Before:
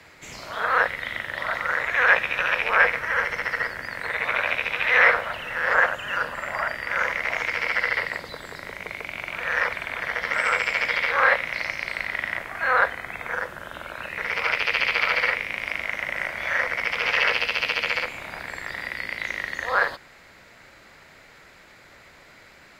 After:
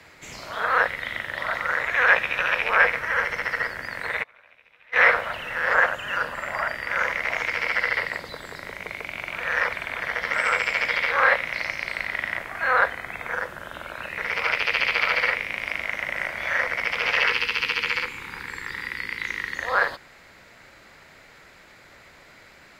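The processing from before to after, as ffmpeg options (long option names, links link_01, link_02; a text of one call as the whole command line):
ffmpeg -i in.wav -filter_complex "[0:a]asplit=3[link_01][link_02][link_03];[link_01]afade=type=out:start_time=4.22:duration=0.02[link_04];[link_02]agate=range=-30dB:threshold=-18dB:ratio=16:release=100:detection=peak,afade=type=in:start_time=4.22:duration=0.02,afade=type=out:start_time=4.99:duration=0.02[link_05];[link_03]afade=type=in:start_time=4.99:duration=0.02[link_06];[link_04][link_05][link_06]amix=inputs=3:normalize=0,asettb=1/sr,asplit=3[link_07][link_08][link_09];[link_07]atrim=end=17.264[link_10];[link_08]atrim=start=17.26:end=19.56,asetpts=PTS-STARTPTS,afade=type=in:duration=0.004:curve=qsin,afade=type=out:start_time=2.296:duration=0.004:curve=qsin,asuperstop=centerf=650:order=4:qfactor=1.8[link_11];[link_09]atrim=start=19.556[link_12];[link_10][link_11]acrossfade=duration=0.004:curve1=hsin:curve2=qsin[link_13];[link_13][link_12]acrossfade=duration=0.004:curve1=qsin:curve2=hsin" out.wav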